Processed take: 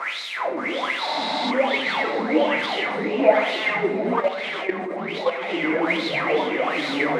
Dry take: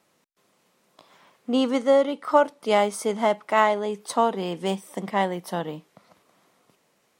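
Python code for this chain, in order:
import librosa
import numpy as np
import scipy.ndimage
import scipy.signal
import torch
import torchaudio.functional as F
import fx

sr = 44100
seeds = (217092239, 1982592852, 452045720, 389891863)

p1 = fx.delta_mod(x, sr, bps=64000, step_db=-17.5)
p2 = fx.wah_lfo(p1, sr, hz=1.2, low_hz=260.0, high_hz=4000.0, q=12.0)
p3 = fx.room_shoebox(p2, sr, seeds[0], volume_m3=270.0, walls='mixed', distance_m=0.75)
p4 = fx.echo_pitch(p3, sr, ms=567, semitones=-2, count=3, db_per_echo=-3.0)
p5 = fx.peak_eq(p4, sr, hz=2100.0, db=12.5, octaves=0.25)
p6 = fx.spec_repair(p5, sr, seeds[1], start_s=1.1, length_s=0.38, low_hz=320.0, high_hz=10000.0, source='before')
p7 = fx.peak_eq(p6, sr, hz=550.0, db=9.0, octaves=2.4)
p8 = p7 + fx.echo_swing(p7, sr, ms=950, ratio=3, feedback_pct=46, wet_db=-15, dry=0)
p9 = fx.level_steps(p8, sr, step_db=11, at=(4.2, 5.5))
y = p9 * 10.0 ** (4.5 / 20.0)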